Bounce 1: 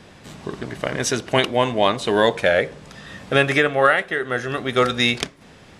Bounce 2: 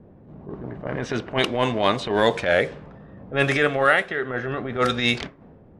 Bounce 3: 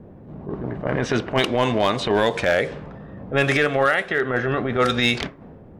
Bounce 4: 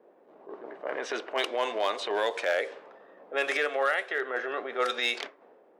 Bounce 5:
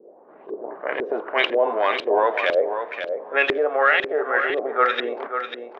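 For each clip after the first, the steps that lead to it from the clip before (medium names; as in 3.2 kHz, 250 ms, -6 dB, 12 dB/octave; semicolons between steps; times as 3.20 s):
transient shaper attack -12 dB, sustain +1 dB; level-controlled noise filter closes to 450 Hz, open at -15.5 dBFS
compression 8:1, threshold -20 dBFS, peak gain reduction 8.5 dB; hard clipper -15.5 dBFS, distortion -24 dB; trim +5.5 dB
high-pass 400 Hz 24 dB/octave; trim -7.5 dB
LFO low-pass saw up 2 Hz 360–3500 Hz; on a send: feedback delay 544 ms, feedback 17%, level -8 dB; on the sum: trim +5.5 dB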